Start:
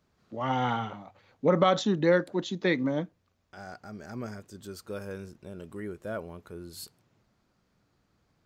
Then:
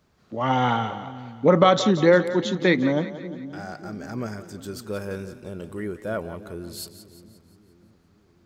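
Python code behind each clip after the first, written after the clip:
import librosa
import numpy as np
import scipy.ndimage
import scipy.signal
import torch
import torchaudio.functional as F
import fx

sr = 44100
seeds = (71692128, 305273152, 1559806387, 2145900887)

y = fx.echo_split(x, sr, split_hz=330.0, low_ms=588, high_ms=176, feedback_pct=52, wet_db=-13.0)
y = y * 10.0 ** (6.5 / 20.0)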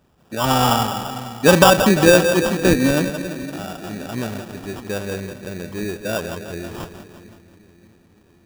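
y = fx.echo_tape(x, sr, ms=173, feedback_pct=62, wet_db=-10.0, lp_hz=4200.0, drive_db=5.0, wow_cents=29)
y = fx.sample_hold(y, sr, seeds[0], rate_hz=2100.0, jitter_pct=0)
y = y * 10.0 ** (4.5 / 20.0)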